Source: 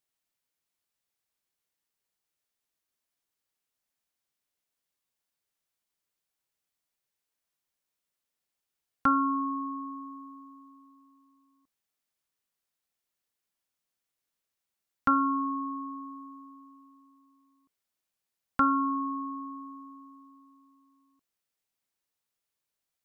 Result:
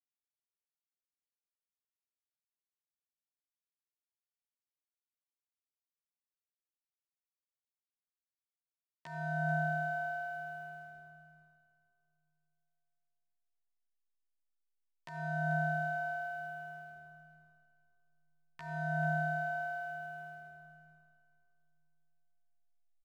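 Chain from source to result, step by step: expander -54 dBFS; resonant high shelf 1.6 kHz +13 dB, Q 1.5; compressor with a negative ratio -33 dBFS, ratio -1; ring modulator 430 Hz; hysteresis with a dead band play -51 dBFS; doubling 13 ms -2 dB; feedback delay 439 ms, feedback 28%, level -12.5 dB; on a send at -7 dB: reverberation RT60 2.9 s, pre-delay 62 ms; on the sum: trim -4 dB

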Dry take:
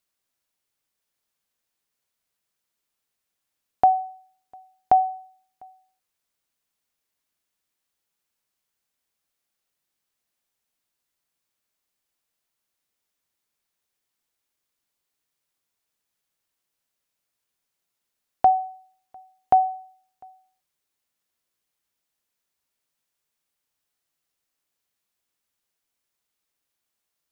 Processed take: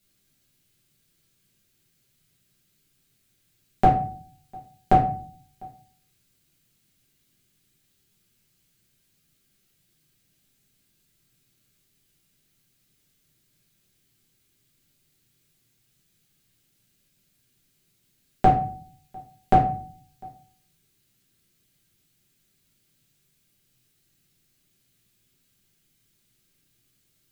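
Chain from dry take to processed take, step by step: ten-band graphic EQ 125 Hz +11 dB, 250 Hz +5 dB, 500 Hz -6 dB, 1 kHz -11 dB; compression, threshold -27 dBFS, peak gain reduction 7 dB; simulated room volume 38 m³, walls mixed, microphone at 1.2 m; trim +6.5 dB

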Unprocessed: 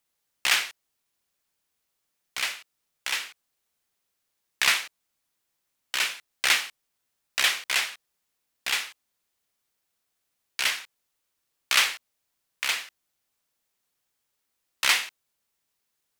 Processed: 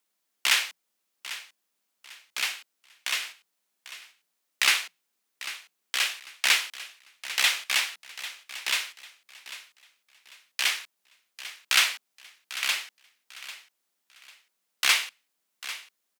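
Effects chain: frequency shift +160 Hz; feedback delay 796 ms, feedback 29%, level -14.5 dB

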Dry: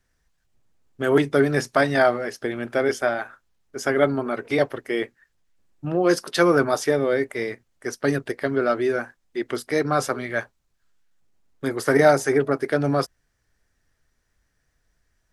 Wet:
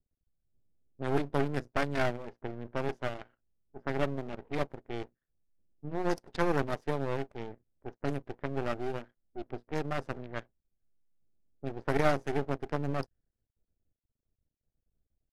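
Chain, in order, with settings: local Wiener filter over 41 samples; half-wave rectifier; level-controlled noise filter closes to 880 Hz, open at -22.5 dBFS; trim -7 dB

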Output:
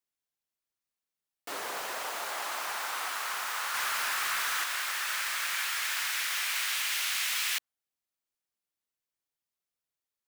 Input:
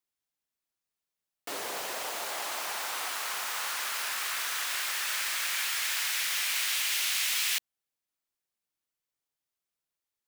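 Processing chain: 3.74–4.64 s: jump at every zero crossing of -35 dBFS; dynamic bell 1.3 kHz, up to +6 dB, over -46 dBFS, Q 0.96; trim -3 dB

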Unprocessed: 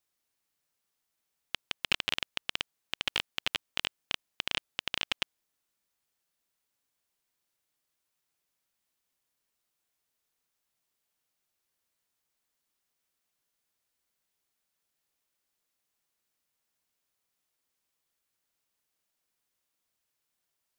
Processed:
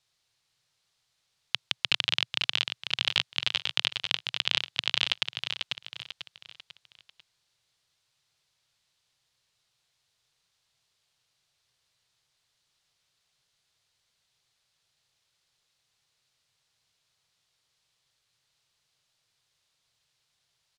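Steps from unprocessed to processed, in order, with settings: low-pass 8.1 kHz 12 dB/octave; feedback delay 494 ms, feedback 39%, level -11.5 dB; in parallel at -0.5 dB: compressor with a negative ratio -36 dBFS, ratio -0.5; on the sum: graphic EQ 125/250/4000 Hz +11/-10/+8 dB; trim -2 dB

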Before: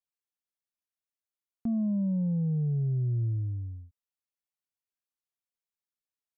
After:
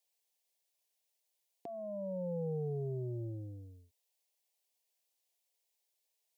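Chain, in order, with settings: high-pass 410 Hz 12 dB/octave; peak limiter -41 dBFS, peak gain reduction 6 dB; static phaser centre 550 Hz, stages 4; trim +12.5 dB

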